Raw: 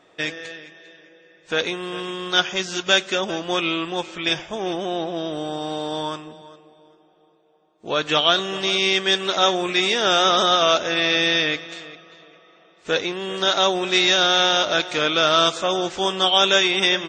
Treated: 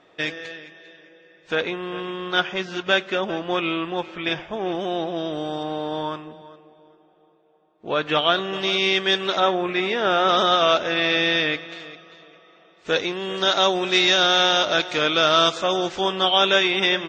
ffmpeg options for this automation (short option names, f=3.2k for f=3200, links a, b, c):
-af "asetnsamples=n=441:p=0,asendcmd='1.55 lowpass f 2700;4.75 lowpass f 4600;5.63 lowpass f 2800;8.53 lowpass f 4200;9.4 lowpass f 2200;10.29 lowpass f 3700;11.8 lowpass f 6000;16.01 lowpass f 3700',lowpass=5k"